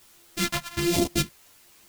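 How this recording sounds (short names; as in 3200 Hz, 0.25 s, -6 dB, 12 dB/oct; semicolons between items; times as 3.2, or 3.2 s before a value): a buzz of ramps at a fixed pitch in blocks of 128 samples; phasing stages 2, 1.2 Hz, lowest notch 330–1500 Hz; a quantiser's noise floor 10-bit, dither triangular; a shimmering, thickened sound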